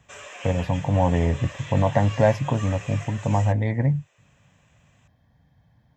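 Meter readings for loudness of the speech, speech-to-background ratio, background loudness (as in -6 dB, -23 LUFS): -23.5 LUFS, 15.5 dB, -39.0 LUFS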